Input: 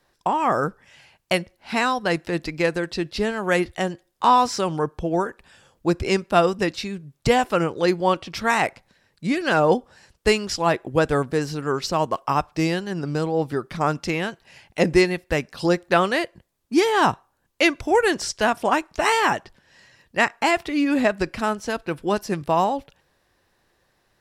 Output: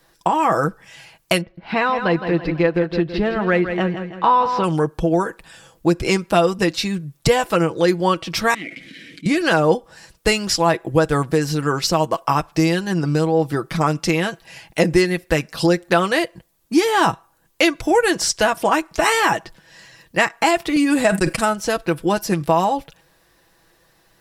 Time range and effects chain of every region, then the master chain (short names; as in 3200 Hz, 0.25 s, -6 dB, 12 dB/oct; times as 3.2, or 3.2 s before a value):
1.41–4.64 air absorption 340 m + feedback echo 0.163 s, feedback 44%, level -10.5 dB
8.54–9.26 CVSD 64 kbps + vowel filter i + fast leveller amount 70%
20.76–21.45 gate -33 dBFS, range -28 dB + bell 8700 Hz +13.5 dB 0.42 oct + sustainer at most 82 dB/s
whole clip: high shelf 9300 Hz +9 dB; comb 6.1 ms, depth 52%; compressor 2:1, threshold -23 dBFS; gain +6.5 dB